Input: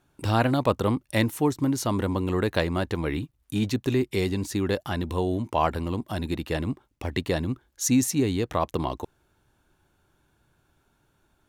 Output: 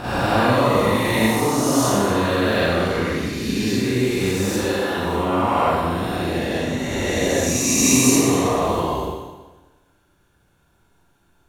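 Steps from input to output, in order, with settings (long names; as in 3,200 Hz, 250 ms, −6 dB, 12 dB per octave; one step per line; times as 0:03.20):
peak hold with a rise ahead of every peak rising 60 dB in 2.77 s
0:01.47–0:02.31: double-tracking delay 25 ms −2.5 dB
0:04.53–0:04.97: high-pass filter 300 Hz 6 dB per octave
0:07.39–0:08.14: parametric band 3,000 Hz +6.5 dB 1.9 octaves
four-comb reverb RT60 1.2 s, combs from 32 ms, DRR −10 dB
level −8.5 dB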